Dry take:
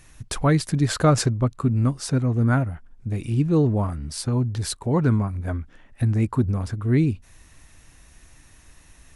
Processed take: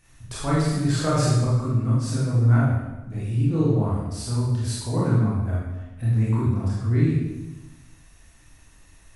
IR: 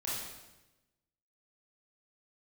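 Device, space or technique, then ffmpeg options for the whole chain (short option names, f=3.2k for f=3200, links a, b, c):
bathroom: -filter_complex "[1:a]atrim=start_sample=2205[a];[0:a][a]afir=irnorm=-1:irlink=0,volume=-5.5dB"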